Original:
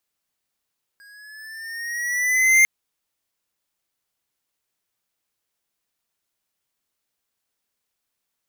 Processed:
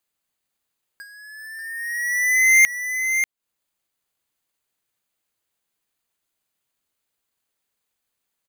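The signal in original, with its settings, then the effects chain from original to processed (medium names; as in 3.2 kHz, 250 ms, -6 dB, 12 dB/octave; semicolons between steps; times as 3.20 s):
gliding synth tone square, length 1.65 s, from 1.63 kHz, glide +4.5 st, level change +35.5 dB, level -12.5 dB
band-stop 5.5 kHz, Q 7.2; transient shaper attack +12 dB, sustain -8 dB; delay 589 ms -7.5 dB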